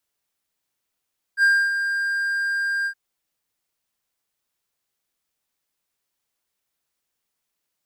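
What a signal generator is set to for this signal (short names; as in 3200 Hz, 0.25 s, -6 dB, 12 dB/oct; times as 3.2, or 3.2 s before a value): ADSR triangle 1600 Hz, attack 62 ms, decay 0.273 s, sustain -8.5 dB, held 1.49 s, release 78 ms -10.5 dBFS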